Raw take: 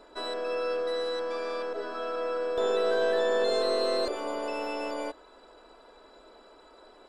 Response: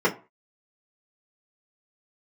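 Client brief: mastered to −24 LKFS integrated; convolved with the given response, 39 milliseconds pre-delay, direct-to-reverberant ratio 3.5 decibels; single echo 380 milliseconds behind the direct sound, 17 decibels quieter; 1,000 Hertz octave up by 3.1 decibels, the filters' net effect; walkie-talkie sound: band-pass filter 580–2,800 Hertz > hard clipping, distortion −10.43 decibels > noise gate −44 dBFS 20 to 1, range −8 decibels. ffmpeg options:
-filter_complex "[0:a]equalizer=frequency=1000:width_type=o:gain=5,aecho=1:1:380:0.141,asplit=2[link_01][link_02];[1:a]atrim=start_sample=2205,adelay=39[link_03];[link_02][link_03]afir=irnorm=-1:irlink=0,volume=-20dB[link_04];[link_01][link_04]amix=inputs=2:normalize=0,highpass=580,lowpass=2800,asoftclip=type=hard:threshold=-25.5dB,agate=range=-8dB:threshold=-44dB:ratio=20,volume=5.5dB"

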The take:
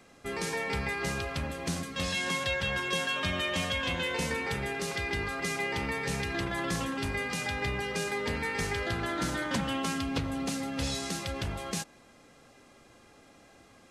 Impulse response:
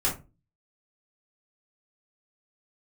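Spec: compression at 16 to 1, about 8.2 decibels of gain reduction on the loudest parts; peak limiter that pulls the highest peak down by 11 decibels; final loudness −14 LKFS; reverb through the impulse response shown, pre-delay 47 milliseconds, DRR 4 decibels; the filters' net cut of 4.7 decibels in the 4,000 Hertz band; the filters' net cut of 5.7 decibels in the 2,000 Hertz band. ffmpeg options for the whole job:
-filter_complex "[0:a]equalizer=frequency=2000:width_type=o:gain=-6,equalizer=frequency=4000:width_type=o:gain=-4,acompressor=threshold=-36dB:ratio=16,alimiter=level_in=13dB:limit=-24dB:level=0:latency=1,volume=-13dB,asplit=2[link_01][link_02];[1:a]atrim=start_sample=2205,adelay=47[link_03];[link_02][link_03]afir=irnorm=-1:irlink=0,volume=-13.5dB[link_04];[link_01][link_04]amix=inputs=2:normalize=0,volume=28.5dB"

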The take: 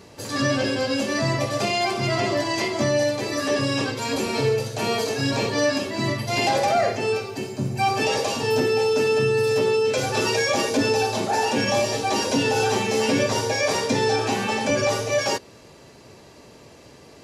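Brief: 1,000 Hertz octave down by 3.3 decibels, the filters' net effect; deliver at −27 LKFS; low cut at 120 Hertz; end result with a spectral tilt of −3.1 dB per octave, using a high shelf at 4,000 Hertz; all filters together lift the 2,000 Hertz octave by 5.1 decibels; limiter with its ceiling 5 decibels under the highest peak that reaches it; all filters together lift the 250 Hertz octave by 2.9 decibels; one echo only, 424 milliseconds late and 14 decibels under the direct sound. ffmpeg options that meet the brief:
ffmpeg -i in.wav -af "highpass=120,equalizer=frequency=250:width_type=o:gain=4,equalizer=frequency=1000:width_type=o:gain=-6.5,equalizer=frequency=2000:width_type=o:gain=6.5,highshelf=frequency=4000:gain=5.5,alimiter=limit=-12dB:level=0:latency=1,aecho=1:1:424:0.2,volume=-6dB" out.wav

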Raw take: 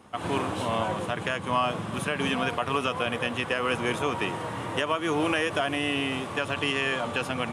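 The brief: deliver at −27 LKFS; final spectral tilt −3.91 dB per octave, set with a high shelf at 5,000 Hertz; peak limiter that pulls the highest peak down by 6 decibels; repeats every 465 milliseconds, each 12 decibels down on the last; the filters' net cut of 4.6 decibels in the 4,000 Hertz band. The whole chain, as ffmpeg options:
ffmpeg -i in.wav -af "equalizer=frequency=4000:width_type=o:gain=-6,highshelf=frequency=5000:gain=-3,alimiter=limit=-19.5dB:level=0:latency=1,aecho=1:1:465|930|1395:0.251|0.0628|0.0157,volume=3.5dB" out.wav

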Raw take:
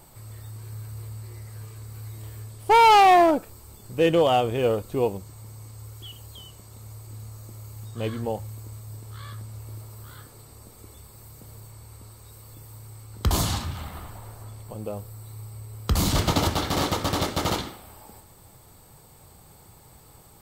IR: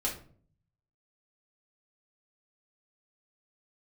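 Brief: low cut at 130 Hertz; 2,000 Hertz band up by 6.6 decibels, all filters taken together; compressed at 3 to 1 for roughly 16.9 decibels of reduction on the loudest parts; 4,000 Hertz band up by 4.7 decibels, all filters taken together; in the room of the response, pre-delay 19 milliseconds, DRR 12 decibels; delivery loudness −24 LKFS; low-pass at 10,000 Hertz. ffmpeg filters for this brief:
-filter_complex "[0:a]highpass=130,lowpass=10000,equalizer=frequency=2000:width_type=o:gain=7,equalizer=frequency=4000:width_type=o:gain=3.5,acompressor=threshold=-34dB:ratio=3,asplit=2[link_01][link_02];[1:a]atrim=start_sample=2205,adelay=19[link_03];[link_02][link_03]afir=irnorm=-1:irlink=0,volume=-16.5dB[link_04];[link_01][link_04]amix=inputs=2:normalize=0,volume=13dB"

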